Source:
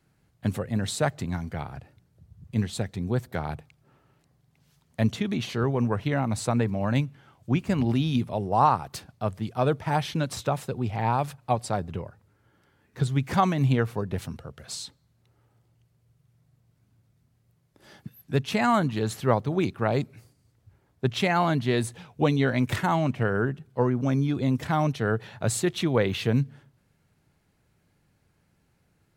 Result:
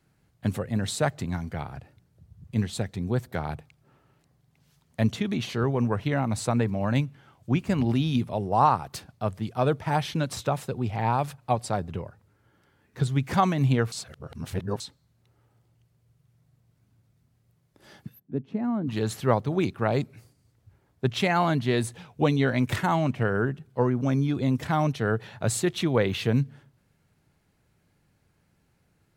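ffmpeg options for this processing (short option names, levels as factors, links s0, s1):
-filter_complex "[0:a]asplit=3[s0][s1][s2];[s0]afade=t=out:st=18.18:d=0.02[s3];[s1]bandpass=f=260:t=q:w=1.8,afade=t=in:st=18.18:d=0.02,afade=t=out:st=18.87:d=0.02[s4];[s2]afade=t=in:st=18.87:d=0.02[s5];[s3][s4][s5]amix=inputs=3:normalize=0,asplit=3[s6][s7][s8];[s6]atrim=end=13.922[s9];[s7]atrim=start=13.918:end=14.802,asetpts=PTS-STARTPTS,areverse[s10];[s8]atrim=start=14.798[s11];[s9][s10]acrossfade=d=0.004:c1=hsin:c2=hsin[s12];[s12][s11]acrossfade=d=0.004:c1=hsin:c2=hsin"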